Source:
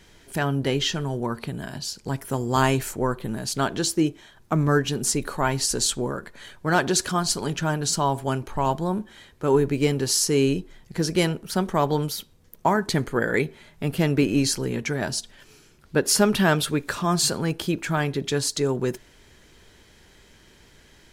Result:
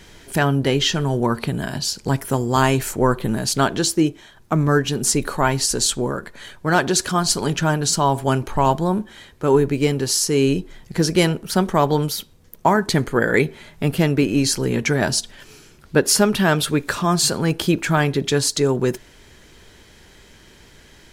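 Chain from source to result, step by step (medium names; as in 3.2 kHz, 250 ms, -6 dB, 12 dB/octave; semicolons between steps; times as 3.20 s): gain riding within 3 dB 0.5 s; trim +5 dB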